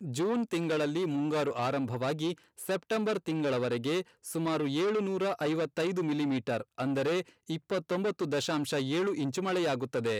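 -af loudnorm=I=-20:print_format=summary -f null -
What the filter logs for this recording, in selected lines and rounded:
Input Integrated:    -31.6 LUFS
Input True Peak:     -21.7 dBTP
Input LRA:             0.7 LU
Input Threshold:     -41.6 LUFS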